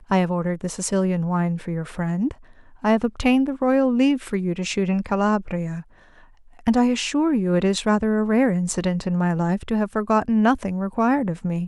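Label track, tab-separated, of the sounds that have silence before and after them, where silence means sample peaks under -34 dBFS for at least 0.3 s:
2.840000	5.810000	sound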